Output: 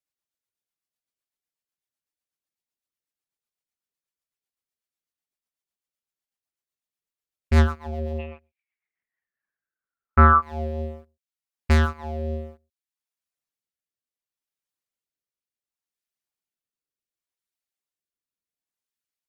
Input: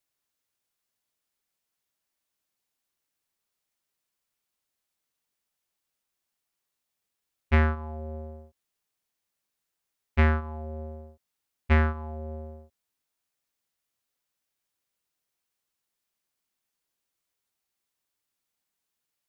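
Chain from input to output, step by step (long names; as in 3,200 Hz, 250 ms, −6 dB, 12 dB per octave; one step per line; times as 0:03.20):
reverb reduction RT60 0.51 s
leveller curve on the samples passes 3
rotating-speaker cabinet horn 8 Hz, later 0.7 Hz, at 0:08.74
0:08.18–0:10.41: low-pass with resonance 2,700 Hz → 1,200 Hz, resonance Q 14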